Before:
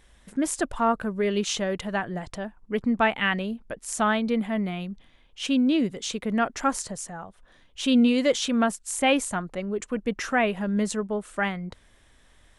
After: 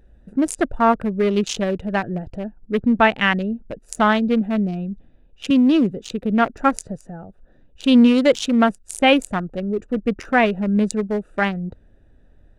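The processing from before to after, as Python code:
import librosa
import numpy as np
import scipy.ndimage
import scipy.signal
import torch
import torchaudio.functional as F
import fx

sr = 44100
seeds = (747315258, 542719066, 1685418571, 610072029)

y = fx.wiener(x, sr, points=41)
y = fx.band_squash(y, sr, depth_pct=40, at=(5.5, 6.0))
y = y * librosa.db_to_amplitude(7.5)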